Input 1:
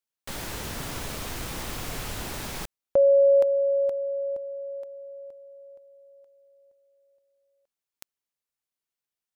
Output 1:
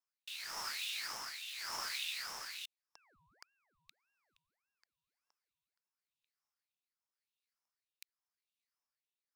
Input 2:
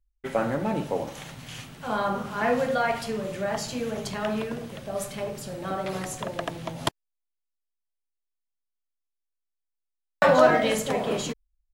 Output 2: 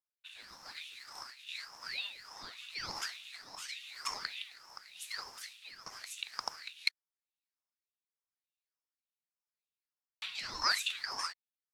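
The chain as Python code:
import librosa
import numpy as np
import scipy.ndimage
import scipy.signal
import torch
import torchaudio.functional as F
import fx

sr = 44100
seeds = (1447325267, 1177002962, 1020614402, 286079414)

y = fx.ladder_highpass(x, sr, hz=3000.0, resonance_pct=80)
y = fx.rotary(y, sr, hz=0.9)
y = fx.ring_lfo(y, sr, carrier_hz=1300.0, swing_pct=70, hz=1.7)
y = y * librosa.db_to_amplitude(7.5)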